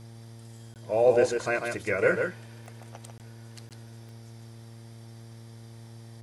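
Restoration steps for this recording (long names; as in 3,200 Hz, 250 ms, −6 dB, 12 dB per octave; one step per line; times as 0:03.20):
click removal
hum removal 114.3 Hz, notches 8
repair the gap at 0:00.74/0:03.18/0:03.69, 18 ms
echo removal 147 ms −5 dB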